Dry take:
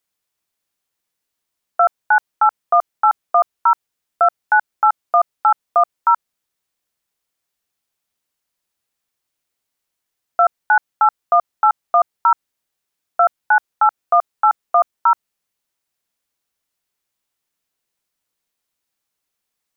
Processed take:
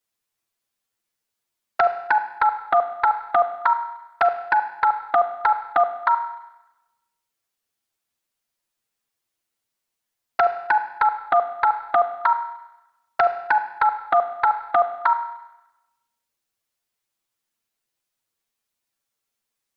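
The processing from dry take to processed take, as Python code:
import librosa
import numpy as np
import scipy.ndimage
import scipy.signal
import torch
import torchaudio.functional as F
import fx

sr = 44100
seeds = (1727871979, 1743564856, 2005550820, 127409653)

y = fx.env_flanger(x, sr, rest_ms=8.8, full_db=-11.5)
y = fx.rev_schroeder(y, sr, rt60_s=1.0, comb_ms=33, drr_db=10.0)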